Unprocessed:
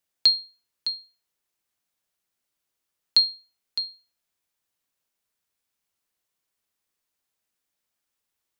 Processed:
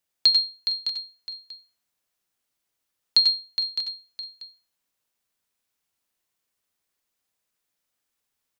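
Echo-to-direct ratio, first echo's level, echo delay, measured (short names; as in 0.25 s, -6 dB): -3.5 dB, -7.5 dB, 91 ms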